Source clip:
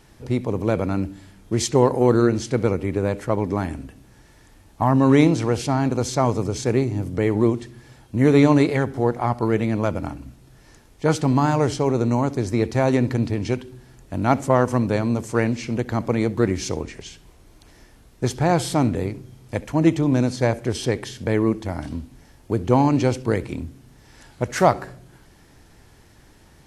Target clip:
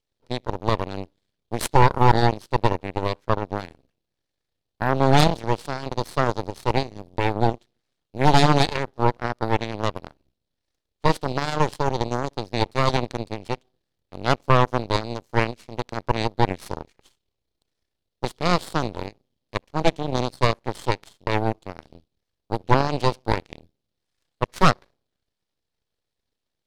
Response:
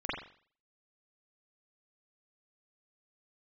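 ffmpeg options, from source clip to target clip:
-af "equalizer=frequency=125:width_type=o:width=1:gain=-4,equalizer=frequency=250:width_type=o:width=1:gain=-6,equalizer=frequency=500:width_type=o:width=1:gain=6,equalizer=frequency=1000:width_type=o:width=1:gain=-8,equalizer=frequency=2000:width_type=o:width=1:gain=-3,equalizer=frequency=4000:width_type=o:width=1:gain=11,equalizer=frequency=8000:width_type=o:width=1:gain=-9,aeval=exprs='0.708*(cos(1*acos(clip(val(0)/0.708,-1,1)))-cos(1*PI/2))+0.112*(cos(5*acos(clip(val(0)/0.708,-1,1)))-cos(5*PI/2))+0.0158*(cos(6*acos(clip(val(0)/0.708,-1,1)))-cos(6*PI/2))+0.178*(cos(7*acos(clip(val(0)/0.708,-1,1)))-cos(7*PI/2))+0.0355*(cos(8*acos(clip(val(0)/0.708,-1,1)))-cos(8*PI/2))':channel_layout=same,aeval=exprs='abs(val(0))':channel_layout=same,volume=1dB"

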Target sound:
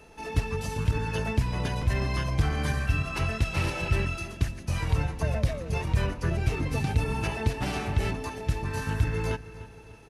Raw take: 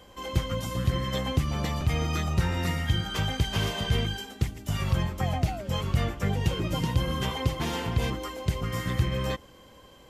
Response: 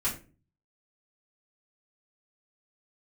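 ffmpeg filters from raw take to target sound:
-filter_complex "[0:a]asetrate=37084,aresample=44100,atempo=1.18921,asplit=2[link_01][link_02];[link_02]adelay=301,lowpass=frequency=4800:poles=1,volume=-16dB,asplit=2[link_03][link_04];[link_04]adelay=301,lowpass=frequency=4800:poles=1,volume=0.48,asplit=2[link_05][link_06];[link_06]adelay=301,lowpass=frequency=4800:poles=1,volume=0.48,asplit=2[link_07][link_08];[link_08]adelay=301,lowpass=frequency=4800:poles=1,volume=0.48[link_09];[link_01][link_03][link_05][link_07][link_09]amix=inputs=5:normalize=0"

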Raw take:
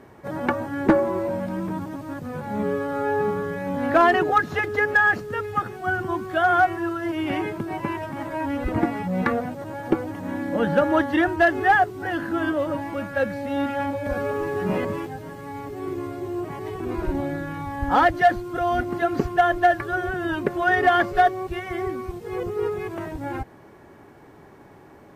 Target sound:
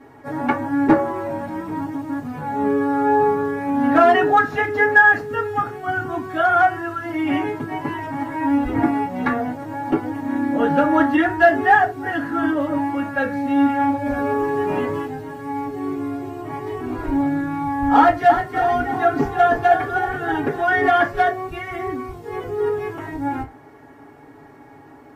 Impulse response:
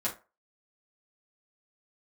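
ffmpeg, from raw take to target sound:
-filter_complex "[0:a]asettb=1/sr,asplit=3[link_01][link_02][link_03];[link_01]atrim=end=17.974[link_04];[link_02]atrim=start=17.97:end=20.61,asetpts=PTS-STARTPTS,afade=type=in:duration=0.004:curve=qsin,afade=type=out:start_time=2.636:duration=0.004:curve=qsin,asplit=5[link_05][link_06][link_07][link_08][link_09];[link_06]adelay=318,afreqshift=48,volume=-8dB[link_10];[link_07]adelay=636,afreqshift=96,volume=-16.2dB[link_11];[link_08]adelay=954,afreqshift=144,volume=-24.4dB[link_12];[link_09]adelay=1272,afreqshift=192,volume=-32.5dB[link_13];[link_05][link_10][link_11][link_12][link_13]amix=inputs=5:normalize=0,atrim=end_sample=116424[link_14];[link_03]atrim=start=20.606[link_15];[link_04][link_14]acrossfade=duration=0.004:curve1=hsin:curve2=qsin[link_16];[link_16][link_15]acrossfade=duration=0.004:curve1=qsin:curve2=hsin[link_17];[1:a]atrim=start_sample=2205,asetrate=57330,aresample=44100[link_18];[link_17][link_18]afir=irnorm=-1:irlink=0,volume=-1dB"

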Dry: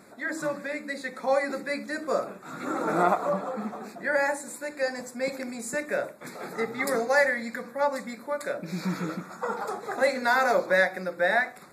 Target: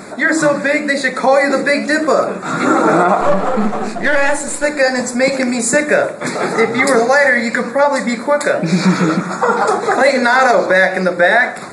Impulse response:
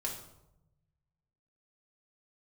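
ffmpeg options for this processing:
-filter_complex "[0:a]asettb=1/sr,asplit=3[link_01][link_02][link_03];[link_01]atrim=end=3.214[link_04];[link_02]atrim=start=3.21:end=4.64,asetpts=PTS-STARTPTS,afade=type=in:duration=0.004:curve=qsin,afade=type=out:start_time=1.426:duration=0.004:curve=qsin,aeval=exprs='if(lt(val(0),0),0.447*val(0),val(0))':channel_layout=same[link_05];[link_03]atrim=start=4.636[link_06];[link_04][link_05]acrossfade=duration=0.004:curve1=hsin:curve2=qsin[link_07];[link_07][link_06]acrossfade=duration=0.004:curve1=qsin:curve2=hsin,asplit=2[link_08][link_09];[link_09]acompressor=threshold=-33dB:ratio=6,volume=1.5dB[link_10];[link_08][link_10]amix=inputs=2:normalize=0,flanger=delay=1.3:depth=8:regen=87:speed=0.89:shape=triangular,asplit=2[link_11][link_12];[1:a]atrim=start_sample=2205[link_13];[link_12][link_13]afir=irnorm=-1:irlink=0,volume=-12.5dB[link_14];[link_11][link_14]amix=inputs=2:normalize=0,aresample=22050,aresample=44100,alimiter=level_in=18dB:limit=-1dB:release=50:level=0:latency=1,volume=-1dB"

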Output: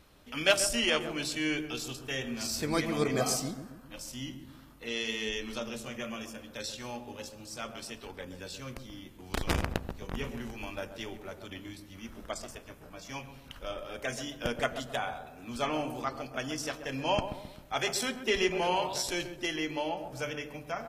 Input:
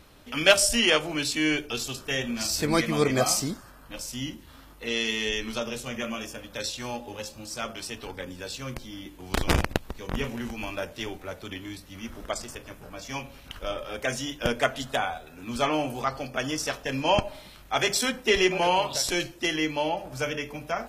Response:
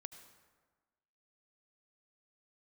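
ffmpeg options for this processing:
-filter_complex "[0:a]asplit=2[link_01][link_02];[link_02]adelay=132,lowpass=frequency=800:poles=1,volume=-7dB,asplit=2[link_03][link_04];[link_04]adelay=132,lowpass=frequency=800:poles=1,volume=0.52,asplit=2[link_05][link_06];[link_06]adelay=132,lowpass=frequency=800:poles=1,volume=0.52,asplit=2[link_07][link_08];[link_08]adelay=132,lowpass=frequency=800:poles=1,volume=0.52,asplit=2[link_09][link_10];[link_10]adelay=132,lowpass=frequency=800:poles=1,volume=0.52,asplit=2[link_11][link_12];[link_12]adelay=132,lowpass=frequency=800:poles=1,volume=0.52[link_13];[link_01][link_03][link_05][link_07][link_09][link_11][link_13]amix=inputs=7:normalize=0,asplit=2[link_14][link_15];[1:a]atrim=start_sample=2205[link_16];[link_15][link_16]afir=irnorm=-1:irlink=0,volume=-9dB[link_17];[link_14][link_17]amix=inputs=2:normalize=0,volume=-8dB"

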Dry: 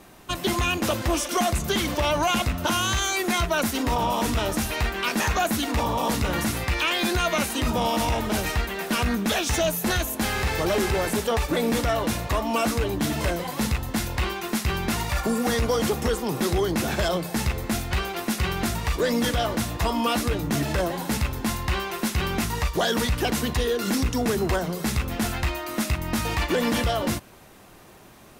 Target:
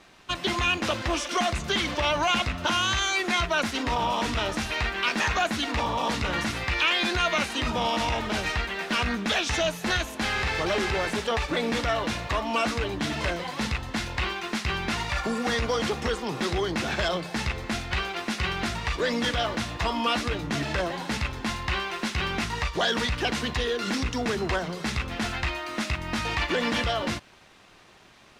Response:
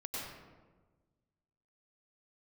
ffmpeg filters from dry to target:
-filter_complex "[0:a]acrossover=split=2600[link_01][link_02];[link_01]aeval=exprs='sgn(val(0))*max(abs(val(0))-0.00133,0)':channel_layout=same[link_03];[link_02]lowpass=4100[link_04];[link_03][link_04]amix=inputs=2:normalize=0,tiltshelf=frequency=1200:gain=-5"

